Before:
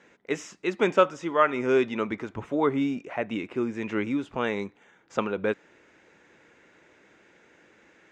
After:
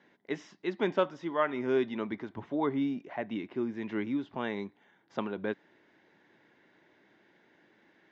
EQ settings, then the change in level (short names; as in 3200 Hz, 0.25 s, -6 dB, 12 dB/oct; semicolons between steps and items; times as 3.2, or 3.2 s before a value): speaker cabinet 120–4600 Hz, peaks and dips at 490 Hz -8 dB, 1300 Hz -8 dB, 2500 Hz -9 dB; -3.5 dB